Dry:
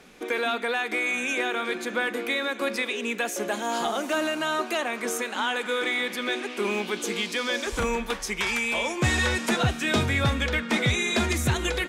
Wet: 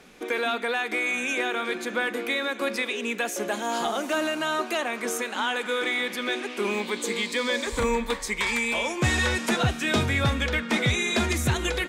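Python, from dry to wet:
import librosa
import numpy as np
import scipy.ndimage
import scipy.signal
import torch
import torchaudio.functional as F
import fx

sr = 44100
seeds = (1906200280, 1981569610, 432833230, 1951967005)

y = fx.ripple_eq(x, sr, per_octave=1.0, db=7, at=(6.73, 8.73))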